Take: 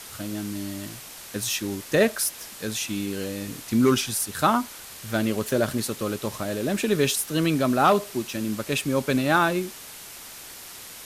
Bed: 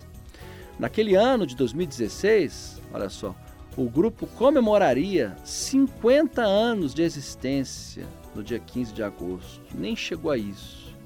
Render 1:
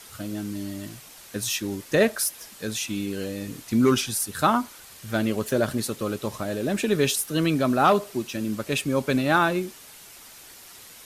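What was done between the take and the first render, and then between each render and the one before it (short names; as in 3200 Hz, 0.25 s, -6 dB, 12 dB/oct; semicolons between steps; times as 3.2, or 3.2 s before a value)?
denoiser 6 dB, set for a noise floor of -42 dBFS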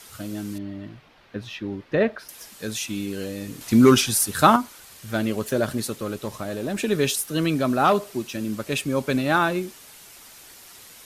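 0.58–2.29 air absorption 340 m; 3.61–4.56 gain +5.5 dB; 5.98–6.77 tube stage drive 19 dB, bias 0.35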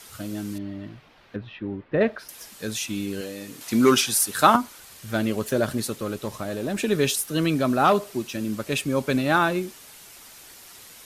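1.36–2.01 air absorption 390 m; 3.21–4.55 HPF 350 Hz 6 dB/oct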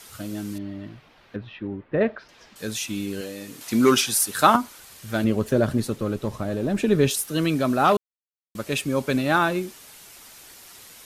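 1.67–2.56 air absorption 190 m; 5.24–7.11 tilt -2 dB/oct; 7.97–8.55 mute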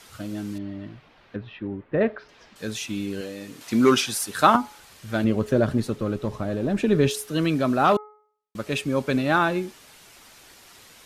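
high shelf 7700 Hz -11 dB; de-hum 423.4 Hz, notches 5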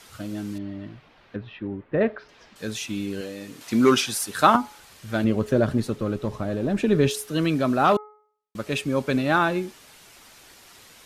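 nothing audible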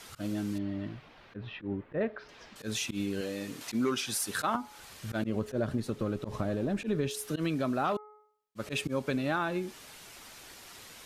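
auto swell 0.107 s; compressor 4:1, threshold -29 dBFS, peak gain reduction 14 dB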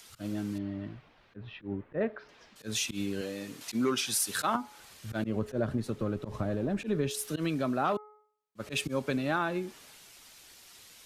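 upward compressor, threshold -51 dBFS; three-band expander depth 40%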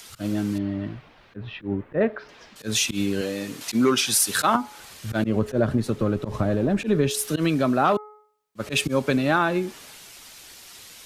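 gain +9 dB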